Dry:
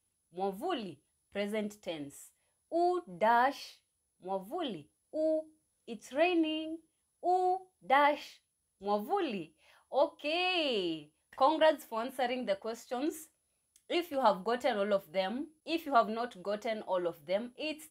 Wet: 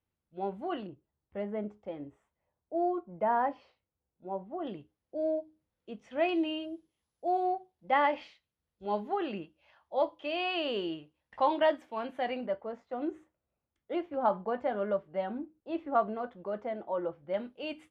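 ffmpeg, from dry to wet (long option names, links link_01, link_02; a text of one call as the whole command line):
ffmpeg -i in.wav -af "asetnsamples=nb_out_samples=441:pad=0,asendcmd='0.87 lowpass f 1200;4.67 lowpass f 2600;6.29 lowpass f 5500;7.28 lowpass f 3100;12.46 lowpass f 1400;17.34 lowpass f 3100',lowpass=2200" out.wav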